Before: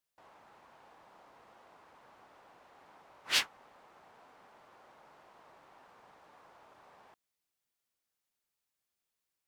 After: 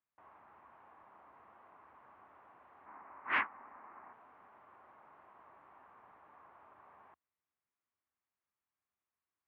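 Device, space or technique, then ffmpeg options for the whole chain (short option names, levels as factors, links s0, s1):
bass cabinet: -filter_complex "[0:a]asettb=1/sr,asplit=3[s0][s1][s2];[s0]atrim=end=2.864[s3];[s1]atrim=start=2.86:end=4.13,asetpts=PTS-STARTPTS,afade=t=in:d=0.004:c=qsin,afade=t=out:st=1.266:d=0.004:c=qsin,equalizer=f=125:t=o:w=1:g=-4,equalizer=f=250:t=o:w=1:g=8,equalizer=f=1000:t=o:w=1:g=6,equalizer=f=2000:t=o:w=1:g=8,equalizer=f=4000:t=o:w=1:g=-11,equalizer=f=8000:t=o:w=1:g=-4[s4];[s2]atrim=start=4.126[s5];[s3][s4]acrossfade=d=0.004:c1=hsin:c2=qsin[s6];[s6][s5]acrossfade=d=0.004:c1=qsin:c2=hsin,highpass=61,equalizer=f=76:t=q:w=4:g=7,equalizer=f=160:t=q:w=4:g=-4,equalizer=f=500:t=q:w=4:g=-5,equalizer=f=1100:t=q:w=4:g=6,lowpass=f=2300:w=0.5412,lowpass=f=2300:w=1.3066,volume=0.75"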